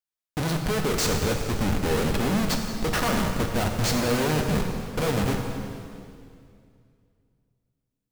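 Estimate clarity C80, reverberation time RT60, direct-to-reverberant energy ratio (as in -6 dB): 5.0 dB, 2.4 s, 2.5 dB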